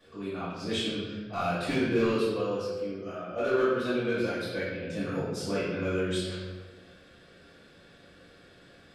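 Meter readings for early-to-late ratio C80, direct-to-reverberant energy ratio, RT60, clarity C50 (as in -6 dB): 1.5 dB, -13.5 dB, 1.4 s, -1.0 dB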